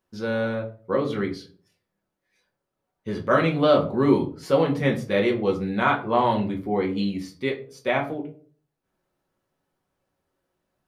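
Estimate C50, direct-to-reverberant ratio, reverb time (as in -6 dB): 12.5 dB, -0.5 dB, 0.45 s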